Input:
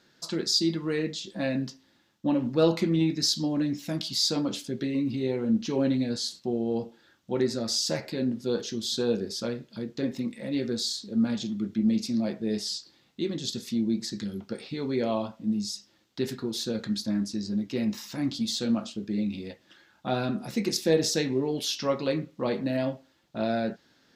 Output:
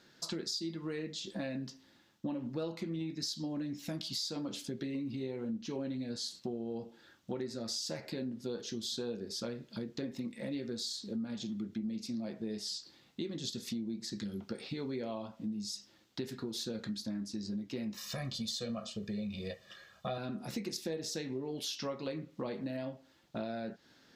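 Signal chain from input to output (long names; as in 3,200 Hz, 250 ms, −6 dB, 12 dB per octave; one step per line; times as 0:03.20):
0:17.96–0:20.18: comb filter 1.7 ms, depth 100%
downward compressor 6 to 1, threshold −36 dBFS, peak gain reduction 17.5 dB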